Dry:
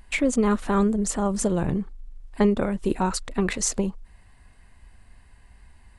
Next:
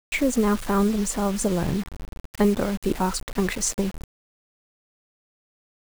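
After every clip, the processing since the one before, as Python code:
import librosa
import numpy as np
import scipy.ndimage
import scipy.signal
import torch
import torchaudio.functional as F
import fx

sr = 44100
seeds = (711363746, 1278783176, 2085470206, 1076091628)

y = fx.quant_dither(x, sr, seeds[0], bits=6, dither='none')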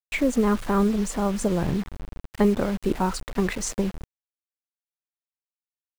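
y = fx.high_shelf(x, sr, hz=4400.0, db=-7.5)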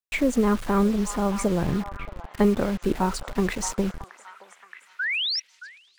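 y = fx.spec_paint(x, sr, seeds[1], shape='rise', start_s=4.99, length_s=0.41, low_hz=1400.0, high_hz=5800.0, level_db=-26.0)
y = fx.echo_stepped(y, sr, ms=623, hz=1000.0, octaves=0.7, feedback_pct=70, wet_db=-8.0)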